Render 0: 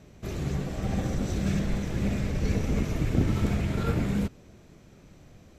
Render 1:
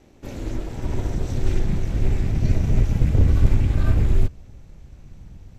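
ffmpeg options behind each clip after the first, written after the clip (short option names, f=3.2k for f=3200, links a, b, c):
-af "aeval=exprs='val(0)*sin(2*PI*180*n/s)':c=same,asubboost=boost=10:cutoff=110,volume=2dB"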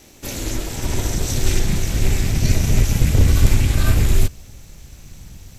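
-af "crystalizer=i=7.5:c=0,volume=2.5dB"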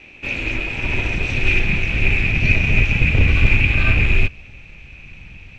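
-af "lowpass=f=2.5k:t=q:w=16,volume=-1.5dB"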